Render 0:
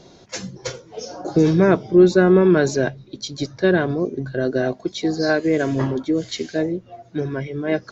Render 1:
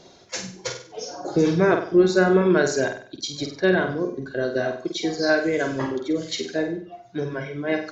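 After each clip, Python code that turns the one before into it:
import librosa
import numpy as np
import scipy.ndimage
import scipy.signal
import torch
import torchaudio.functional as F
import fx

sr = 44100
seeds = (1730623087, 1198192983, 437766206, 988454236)

y = fx.low_shelf(x, sr, hz=330.0, db=-7.5)
y = fx.dereverb_blind(y, sr, rt60_s=0.61)
y = fx.room_flutter(y, sr, wall_m=8.3, rt60_s=0.48)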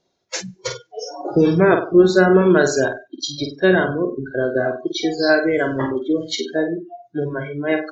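y = fx.noise_reduce_blind(x, sr, reduce_db=25)
y = y * librosa.db_to_amplitude(4.5)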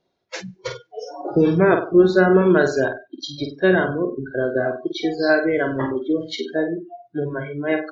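y = scipy.signal.sosfilt(scipy.signal.butter(2, 3700.0, 'lowpass', fs=sr, output='sos'), x)
y = y * librosa.db_to_amplitude(-1.5)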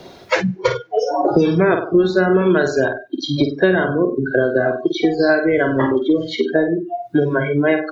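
y = fx.band_squash(x, sr, depth_pct=100)
y = y * librosa.db_to_amplitude(2.5)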